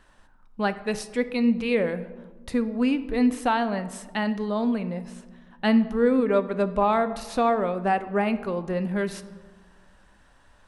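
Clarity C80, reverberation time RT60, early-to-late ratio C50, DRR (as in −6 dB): 15.5 dB, 1.5 s, 14.0 dB, 11.5 dB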